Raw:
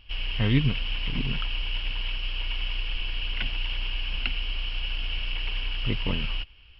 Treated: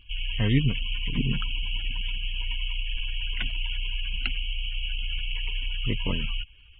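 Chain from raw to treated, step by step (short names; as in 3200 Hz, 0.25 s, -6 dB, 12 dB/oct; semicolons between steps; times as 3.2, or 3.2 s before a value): 1.17–2.57 dynamic EQ 180 Hz, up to +6 dB, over -43 dBFS, Q 0.73; spectral gate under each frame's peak -30 dB strong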